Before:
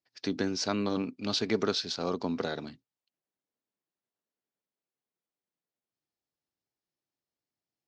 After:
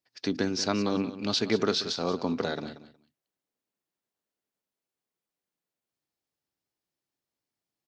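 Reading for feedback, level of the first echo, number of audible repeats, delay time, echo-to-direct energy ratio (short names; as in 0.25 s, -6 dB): 17%, -13.5 dB, 2, 0.183 s, -13.5 dB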